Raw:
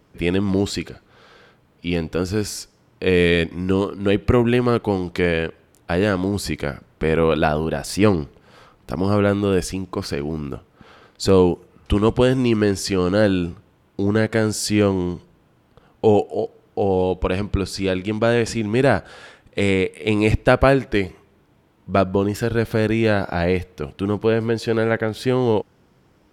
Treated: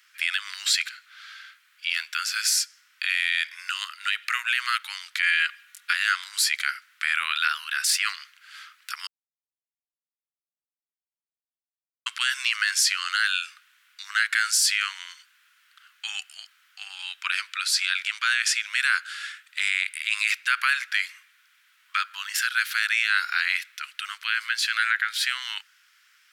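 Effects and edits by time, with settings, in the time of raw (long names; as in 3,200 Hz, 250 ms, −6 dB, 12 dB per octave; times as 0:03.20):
0:05.22–0:05.93: comb filter 4.2 ms, depth 86%
0:09.07–0:12.06: silence
whole clip: Butterworth high-pass 1,400 Hz 48 dB per octave; brickwall limiter −19.5 dBFS; level +8.5 dB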